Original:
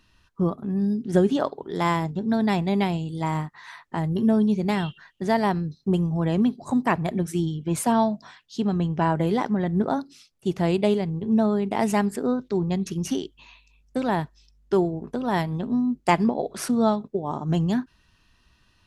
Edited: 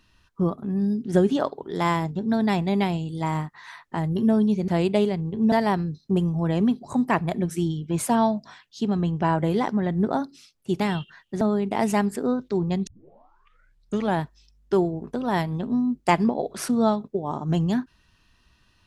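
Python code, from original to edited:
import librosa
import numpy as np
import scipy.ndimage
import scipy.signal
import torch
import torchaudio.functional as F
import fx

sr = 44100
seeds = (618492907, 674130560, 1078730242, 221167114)

y = fx.edit(x, sr, fx.swap(start_s=4.68, length_s=0.61, other_s=10.57, other_length_s=0.84),
    fx.tape_start(start_s=12.87, length_s=1.34), tone=tone)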